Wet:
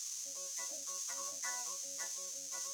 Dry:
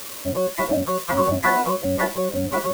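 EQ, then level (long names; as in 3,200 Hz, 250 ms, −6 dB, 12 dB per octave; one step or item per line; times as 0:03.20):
resonant band-pass 6,300 Hz, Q 7.7
+5.0 dB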